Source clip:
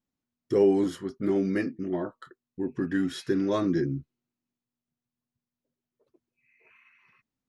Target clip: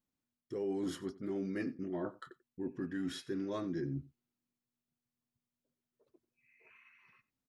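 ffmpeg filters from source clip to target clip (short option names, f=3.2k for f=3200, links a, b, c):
-af "areverse,acompressor=threshold=-32dB:ratio=6,areverse,aecho=1:1:91:0.1,volume=-3dB"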